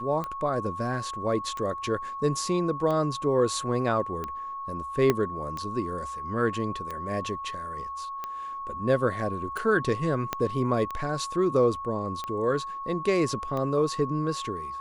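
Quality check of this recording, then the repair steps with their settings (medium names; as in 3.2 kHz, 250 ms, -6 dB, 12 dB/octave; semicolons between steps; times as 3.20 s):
tick 45 rpm -20 dBFS
whine 1.1 kHz -33 dBFS
5.10 s: pop -9 dBFS
10.33 s: pop -12 dBFS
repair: de-click; band-stop 1.1 kHz, Q 30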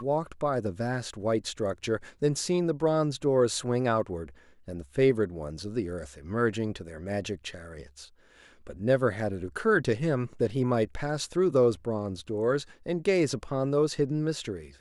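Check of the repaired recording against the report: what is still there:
5.10 s: pop
10.33 s: pop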